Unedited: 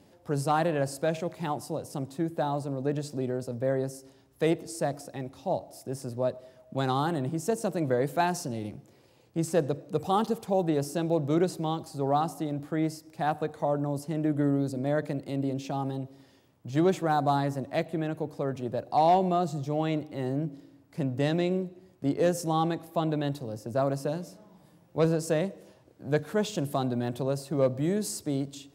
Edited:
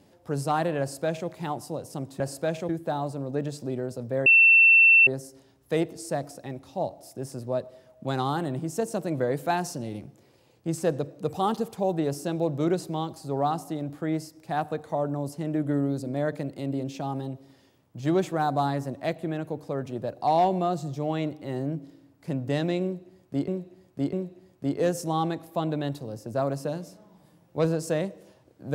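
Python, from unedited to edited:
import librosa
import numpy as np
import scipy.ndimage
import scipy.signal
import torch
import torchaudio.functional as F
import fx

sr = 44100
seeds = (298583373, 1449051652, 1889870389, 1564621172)

y = fx.edit(x, sr, fx.duplicate(start_s=0.8, length_s=0.49, to_s=2.2),
    fx.insert_tone(at_s=3.77, length_s=0.81, hz=2690.0, db=-12.5),
    fx.repeat(start_s=21.53, length_s=0.65, count=3), tone=tone)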